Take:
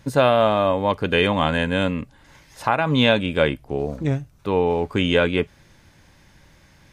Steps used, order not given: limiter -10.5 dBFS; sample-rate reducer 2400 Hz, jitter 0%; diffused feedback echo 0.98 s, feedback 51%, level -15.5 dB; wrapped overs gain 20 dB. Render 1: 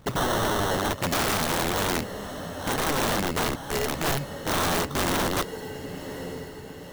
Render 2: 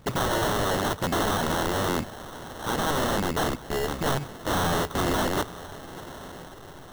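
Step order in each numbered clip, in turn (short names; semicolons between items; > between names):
sample-rate reducer > limiter > diffused feedback echo > wrapped overs; limiter > wrapped overs > diffused feedback echo > sample-rate reducer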